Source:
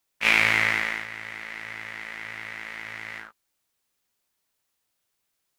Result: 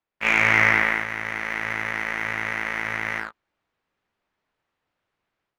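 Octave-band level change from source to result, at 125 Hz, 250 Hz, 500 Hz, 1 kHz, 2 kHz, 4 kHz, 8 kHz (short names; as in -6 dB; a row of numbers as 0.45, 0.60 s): +7.5, +7.0, +7.0, +7.0, +4.0, -3.0, -0.5 dB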